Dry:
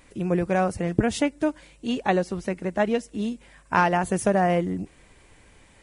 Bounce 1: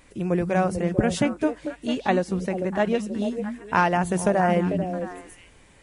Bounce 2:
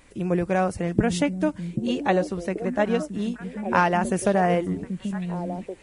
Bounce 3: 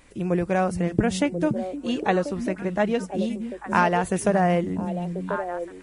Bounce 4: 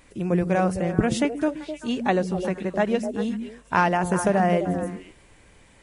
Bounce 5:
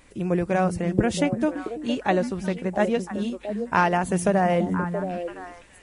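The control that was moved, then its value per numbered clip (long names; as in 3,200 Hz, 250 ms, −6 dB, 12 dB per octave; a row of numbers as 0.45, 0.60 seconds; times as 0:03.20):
echo through a band-pass that steps, delay time: 222, 784, 519, 129, 337 milliseconds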